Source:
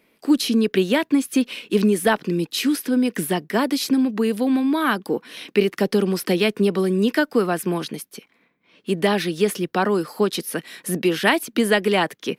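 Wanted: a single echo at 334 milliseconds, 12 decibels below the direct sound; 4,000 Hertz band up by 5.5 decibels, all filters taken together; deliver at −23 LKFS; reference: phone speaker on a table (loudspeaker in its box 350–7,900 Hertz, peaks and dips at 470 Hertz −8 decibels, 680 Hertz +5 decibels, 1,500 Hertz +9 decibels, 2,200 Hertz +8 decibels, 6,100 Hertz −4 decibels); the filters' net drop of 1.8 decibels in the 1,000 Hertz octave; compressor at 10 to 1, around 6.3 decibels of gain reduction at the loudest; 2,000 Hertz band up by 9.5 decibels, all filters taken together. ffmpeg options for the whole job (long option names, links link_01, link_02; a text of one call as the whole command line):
ffmpeg -i in.wav -af "equalizer=frequency=1000:width_type=o:gain=-8.5,equalizer=frequency=2000:width_type=o:gain=5,equalizer=frequency=4000:width_type=o:gain=5,acompressor=threshold=-19dB:ratio=10,highpass=frequency=350:width=0.5412,highpass=frequency=350:width=1.3066,equalizer=frequency=470:width_type=q:width=4:gain=-8,equalizer=frequency=680:width_type=q:width=4:gain=5,equalizer=frequency=1500:width_type=q:width=4:gain=9,equalizer=frequency=2200:width_type=q:width=4:gain=8,equalizer=frequency=6100:width_type=q:width=4:gain=-4,lowpass=frequency=7900:width=0.5412,lowpass=frequency=7900:width=1.3066,aecho=1:1:334:0.251,volume=1.5dB" out.wav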